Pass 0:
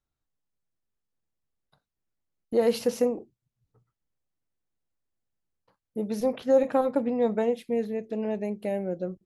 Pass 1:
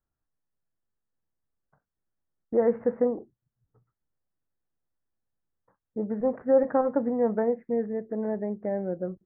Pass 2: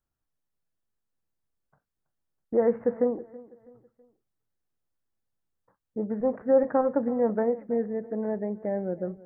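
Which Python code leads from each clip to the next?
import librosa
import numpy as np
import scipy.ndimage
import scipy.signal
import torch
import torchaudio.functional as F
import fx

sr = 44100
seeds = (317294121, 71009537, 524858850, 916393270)

y1 = scipy.signal.sosfilt(scipy.signal.butter(12, 1900.0, 'lowpass', fs=sr, output='sos'), x)
y2 = fx.echo_feedback(y1, sr, ms=326, feedback_pct=39, wet_db=-20)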